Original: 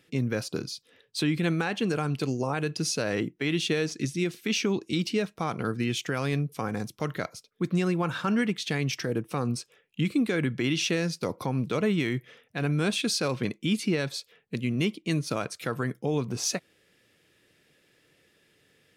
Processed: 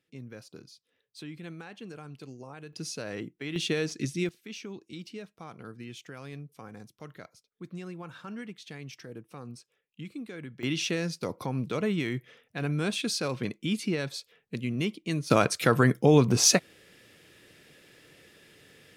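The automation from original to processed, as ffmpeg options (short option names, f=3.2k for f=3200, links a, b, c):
-af "asetnsamples=n=441:p=0,asendcmd='2.73 volume volume -8.5dB;3.56 volume volume -2dB;4.29 volume volume -14.5dB;10.63 volume volume -3dB;15.3 volume volume 8.5dB',volume=-16dB"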